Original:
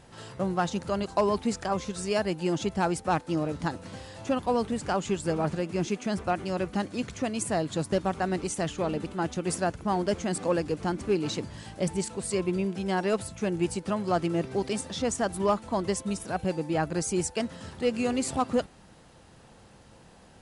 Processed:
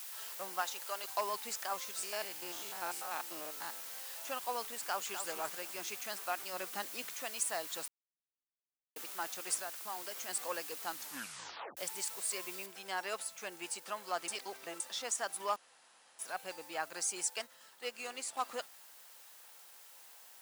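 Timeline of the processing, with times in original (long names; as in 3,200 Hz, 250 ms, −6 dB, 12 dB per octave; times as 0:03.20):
0:00.61–0:01.04: high-pass filter 380 Hz
0:02.03–0:04.06: spectrum averaged block by block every 100 ms
0:04.75–0:05.24: delay throw 250 ms, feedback 40%, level −8.5 dB
0:06.53–0:07.15: low-shelf EQ 360 Hz +7 dB
0:07.88–0:08.96: silence
0:09.59–0:10.29: downward compressor, threshold −27 dBFS
0:10.85: tape stop 0.92 s
0:12.66: noise floor change −46 dB −57 dB
0:14.28–0:14.80: reverse
0:15.56–0:16.19: fill with room tone
0:17.42–0:18.37: expander for the loud parts, over −37 dBFS
whole clip: high-pass filter 940 Hz 12 dB per octave; high-shelf EQ 7,700 Hz +6 dB; level −4.5 dB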